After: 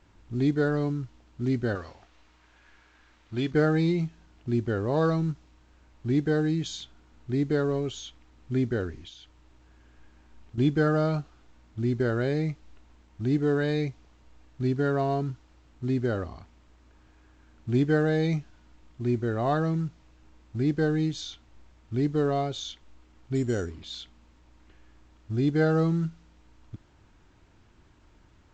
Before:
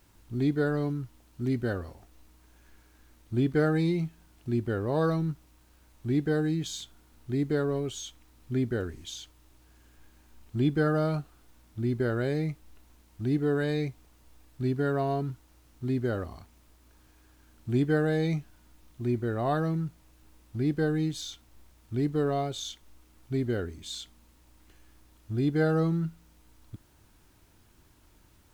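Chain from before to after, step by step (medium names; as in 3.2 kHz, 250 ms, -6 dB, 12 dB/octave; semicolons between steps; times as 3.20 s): 1.75–3.51 s: tilt shelf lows -7 dB, about 660 Hz; 9.05–10.58 s: compression 6:1, threshold -43 dBFS, peak gain reduction 13 dB; 23.35–23.84 s: careless resampling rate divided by 6×, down none, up hold; level-controlled noise filter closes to 2.8 kHz, open at -23 dBFS; trim +2 dB; A-law 128 kbps 16 kHz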